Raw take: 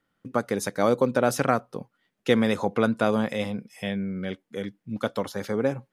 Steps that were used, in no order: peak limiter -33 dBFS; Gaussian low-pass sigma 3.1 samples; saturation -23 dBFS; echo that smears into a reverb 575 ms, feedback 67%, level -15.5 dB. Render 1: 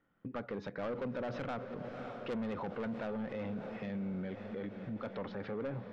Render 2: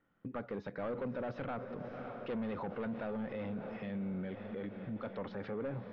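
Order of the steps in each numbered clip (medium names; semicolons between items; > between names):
Gaussian low-pass > saturation > echo that smears into a reverb > peak limiter; saturation > echo that smears into a reverb > peak limiter > Gaussian low-pass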